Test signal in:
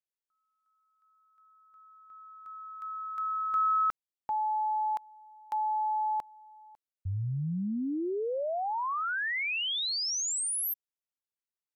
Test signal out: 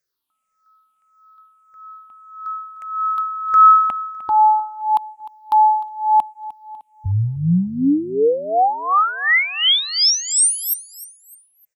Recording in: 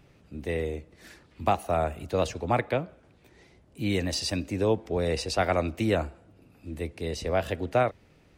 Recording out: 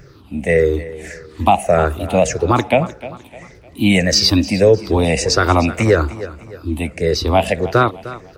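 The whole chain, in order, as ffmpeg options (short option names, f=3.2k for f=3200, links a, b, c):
-af "afftfilt=real='re*pow(10,16/40*sin(2*PI*(0.55*log(max(b,1)*sr/1024/100)/log(2)-(-1.7)*(pts-256)/sr)))':imag='im*pow(10,16/40*sin(2*PI*(0.55*log(max(b,1)*sr/1024/100)/log(2)-(-1.7)*(pts-256)/sr)))':win_size=1024:overlap=0.75,aecho=1:1:304|608|912:0.141|0.0551|0.0215,alimiter=level_in=12dB:limit=-1dB:release=50:level=0:latency=1,volume=-1dB"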